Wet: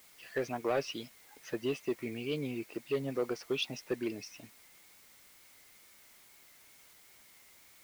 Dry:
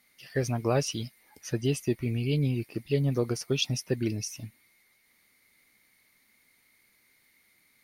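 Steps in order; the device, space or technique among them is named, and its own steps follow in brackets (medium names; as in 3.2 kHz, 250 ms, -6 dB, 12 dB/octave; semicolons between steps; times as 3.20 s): tape answering machine (band-pass 350–3000 Hz; saturation -23.5 dBFS, distortion -15 dB; wow and flutter; white noise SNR 21 dB)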